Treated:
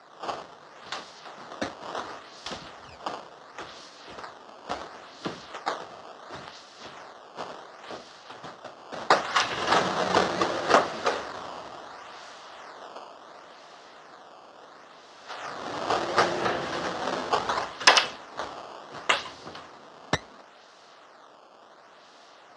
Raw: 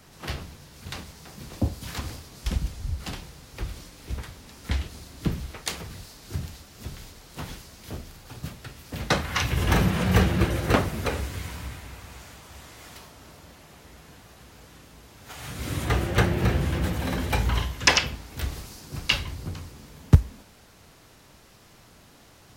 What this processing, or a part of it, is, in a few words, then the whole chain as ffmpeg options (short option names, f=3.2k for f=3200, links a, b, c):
circuit-bent sampling toy: -af "acrusher=samples=13:mix=1:aa=0.000001:lfo=1:lforange=20.8:lforate=0.71,highpass=470,equalizer=f=680:t=q:w=4:g=4,equalizer=f=1.2k:t=q:w=4:g=4,equalizer=f=2.3k:t=q:w=4:g=-8,lowpass=f=5.9k:w=0.5412,lowpass=f=5.9k:w=1.3066,volume=4dB"